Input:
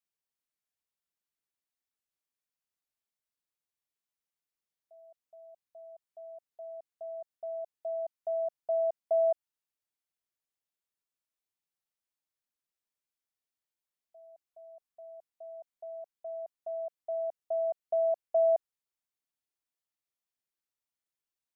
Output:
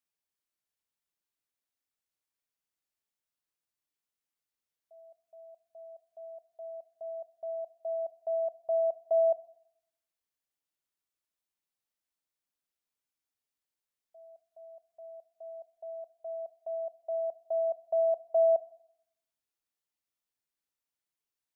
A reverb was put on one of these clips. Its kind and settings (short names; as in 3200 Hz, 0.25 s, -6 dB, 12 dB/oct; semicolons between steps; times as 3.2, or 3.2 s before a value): FDN reverb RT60 0.74 s, low-frequency decay 1.05×, high-frequency decay 1×, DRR 13.5 dB